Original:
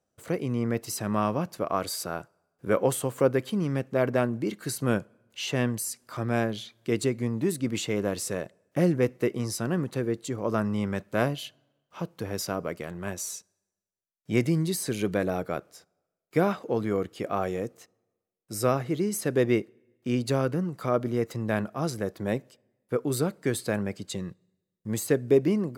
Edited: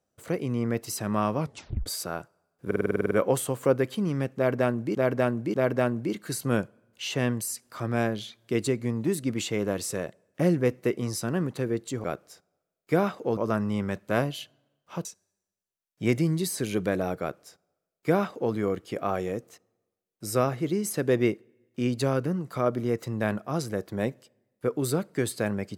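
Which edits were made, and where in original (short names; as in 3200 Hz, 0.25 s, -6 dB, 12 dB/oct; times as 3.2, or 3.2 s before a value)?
1.38 tape stop 0.48 s
2.66 stutter 0.05 s, 10 plays
3.91–4.5 loop, 3 plays
12.09–13.33 cut
15.48–16.81 copy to 10.41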